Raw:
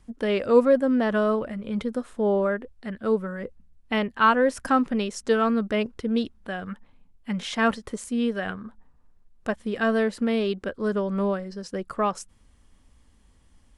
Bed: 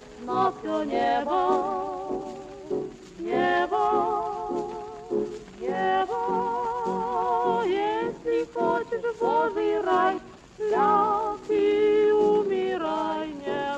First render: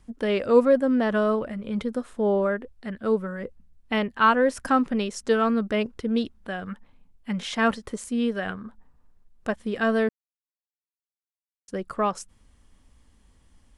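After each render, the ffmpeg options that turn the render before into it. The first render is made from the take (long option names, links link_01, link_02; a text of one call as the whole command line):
ffmpeg -i in.wav -filter_complex "[0:a]asplit=3[link_01][link_02][link_03];[link_01]atrim=end=10.09,asetpts=PTS-STARTPTS,afade=type=out:start_time=10.086:duration=0.004:curve=hsin[link_04];[link_02]atrim=start=10.09:end=11.68,asetpts=PTS-STARTPTS,volume=0[link_05];[link_03]atrim=start=11.68,asetpts=PTS-STARTPTS,afade=type=in:duration=0.004:curve=hsin[link_06];[link_04][link_05][link_06]concat=n=3:v=0:a=1" out.wav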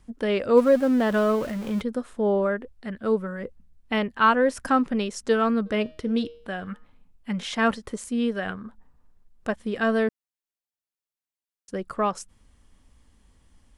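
ffmpeg -i in.wav -filter_complex "[0:a]asettb=1/sr,asplit=3[link_01][link_02][link_03];[link_01]atrim=end=0.574[link_04];[link_02]atrim=start=0.57:end=1.81,asetpts=PTS-STARTPTS,afade=type=in:duration=0.004:curve=qsin,afade=type=out:start_time=1.236:duration=0.004:curve=qsin,aeval=exprs='val(0)+0.5*0.0211*sgn(val(0))':channel_layout=same[link_05];[link_03]atrim=start=1.806[link_06];[link_04][link_05]acrossfade=duration=0.004:curve1=hsin:curve2=qsin[link_07];[link_07][link_06]acrossfade=duration=0.004:curve1=qsin:curve2=hsin,asplit=3[link_08][link_09][link_10];[link_08]afade=type=out:start_time=5.65:duration=0.02[link_11];[link_09]bandreject=frequency=156.6:width_type=h:width=4,bandreject=frequency=313.2:width_type=h:width=4,bandreject=frequency=469.8:width_type=h:width=4,bandreject=frequency=626.4:width_type=h:width=4,bandreject=frequency=783:width_type=h:width=4,bandreject=frequency=939.6:width_type=h:width=4,bandreject=frequency=1096.2:width_type=h:width=4,bandreject=frequency=1252.8:width_type=h:width=4,bandreject=frequency=1409.4:width_type=h:width=4,bandreject=frequency=1566:width_type=h:width=4,bandreject=frequency=1722.6:width_type=h:width=4,bandreject=frequency=1879.2:width_type=h:width=4,bandreject=frequency=2035.8:width_type=h:width=4,bandreject=frequency=2192.4:width_type=h:width=4,bandreject=frequency=2349:width_type=h:width=4,bandreject=frequency=2505.6:width_type=h:width=4,bandreject=frequency=2662.2:width_type=h:width=4,bandreject=frequency=2818.8:width_type=h:width=4,bandreject=frequency=2975.4:width_type=h:width=4,bandreject=frequency=3132:width_type=h:width=4,bandreject=frequency=3288.6:width_type=h:width=4,bandreject=frequency=3445.2:width_type=h:width=4,bandreject=frequency=3601.8:width_type=h:width=4,bandreject=frequency=3758.4:width_type=h:width=4,bandreject=frequency=3915:width_type=h:width=4,bandreject=frequency=4071.6:width_type=h:width=4,bandreject=frequency=4228.2:width_type=h:width=4,bandreject=frequency=4384.8:width_type=h:width=4,bandreject=frequency=4541.4:width_type=h:width=4,bandreject=frequency=4698:width_type=h:width=4,bandreject=frequency=4854.6:width_type=h:width=4,bandreject=frequency=5011.2:width_type=h:width=4,bandreject=frequency=5167.8:width_type=h:width=4,bandreject=frequency=5324.4:width_type=h:width=4,bandreject=frequency=5481:width_type=h:width=4,bandreject=frequency=5637.6:width_type=h:width=4,bandreject=frequency=5794.2:width_type=h:width=4,bandreject=frequency=5950.8:width_type=h:width=4,bandreject=frequency=6107.4:width_type=h:width=4,afade=type=in:start_time=5.65:duration=0.02,afade=type=out:start_time=7.3:duration=0.02[link_12];[link_10]afade=type=in:start_time=7.3:duration=0.02[link_13];[link_11][link_12][link_13]amix=inputs=3:normalize=0" out.wav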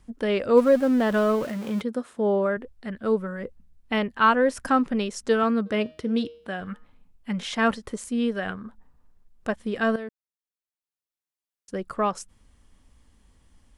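ffmpeg -i in.wav -filter_complex "[0:a]asettb=1/sr,asplit=3[link_01][link_02][link_03];[link_01]atrim=end=1.444[link_04];[link_02]atrim=start=1.44:end=2.57,asetpts=PTS-STARTPTS,afade=type=in:duration=0.004:curve=qsin,afade=type=out:start_time=1.126:duration=0.004:curve=qsin,highpass=130[link_05];[link_03]atrim=start=2.566[link_06];[link_04][link_05]acrossfade=duration=0.004:curve1=hsin:curve2=qsin[link_07];[link_07][link_06]acrossfade=duration=0.004:curve1=qsin:curve2=hsin,asettb=1/sr,asplit=3[link_08][link_09][link_10];[link_08]atrim=end=5.434[link_11];[link_09]atrim=start=5.43:end=6.61,asetpts=PTS-STARTPTS,afade=type=in:duration=0.004:curve=qsin,afade=type=out:start_time=1.176:duration=0.004:curve=qsin,highpass=78[link_12];[link_10]atrim=start=6.606[link_13];[link_11][link_12]acrossfade=duration=0.004:curve1=hsin:curve2=qsin[link_14];[link_14][link_13]acrossfade=duration=0.004:curve1=qsin:curve2=hsin,asplit=2[link_15][link_16];[link_15]atrim=end=9.96,asetpts=PTS-STARTPTS,afade=type=out:start_time=9.956:duration=0.004:curve=hsin:silence=0.211349[link_17];[link_16]atrim=start=9.96,asetpts=PTS-STARTPTS,afade=type=in:duration=1.82:silence=0.211349[link_18];[link_17][link_18]concat=n=2:v=0:a=1" out.wav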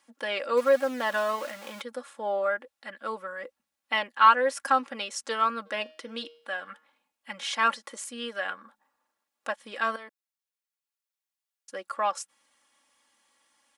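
ffmpeg -i in.wav -af "highpass=750,aecho=1:1:3.6:0.64" out.wav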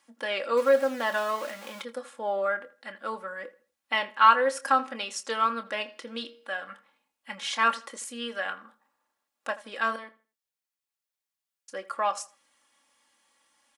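ffmpeg -i in.wav -filter_complex "[0:a]asplit=2[link_01][link_02];[link_02]adelay=26,volume=-11.5dB[link_03];[link_01][link_03]amix=inputs=2:normalize=0,asplit=2[link_04][link_05];[link_05]adelay=81,lowpass=frequency=3500:poles=1,volume=-18dB,asplit=2[link_06][link_07];[link_07]adelay=81,lowpass=frequency=3500:poles=1,volume=0.29,asplit=2[link_08][link_09];[link_09]adelay=81,lowpass=frequency=3500:poles=1,volume=0.29[link_10];[link_04][link_06][link_08][link_10]amix=inputs=4:normalize=0" out.wav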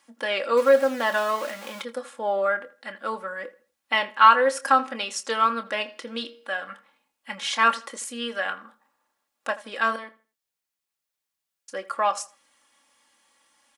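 ffmpeg -i in.wav -af "volume=4dB,alimiter=limit=-3dB:level=0:latency=1" out.wav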